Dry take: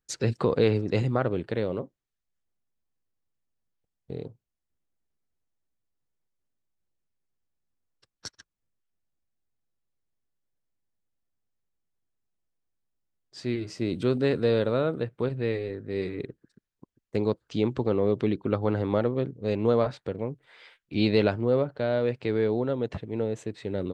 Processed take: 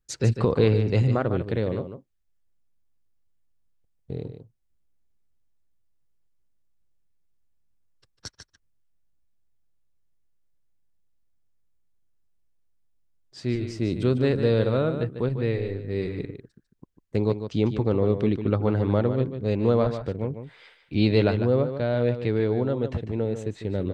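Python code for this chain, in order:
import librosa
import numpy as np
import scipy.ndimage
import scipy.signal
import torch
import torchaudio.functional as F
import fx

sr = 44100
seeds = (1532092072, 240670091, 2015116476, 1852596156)

p1 = fx.low_shelf(x, sr, hz=120.0, db=12.0)
y = p1 + fx.echo_single(p1, sr, ms=149, db=-9.5, dry=0)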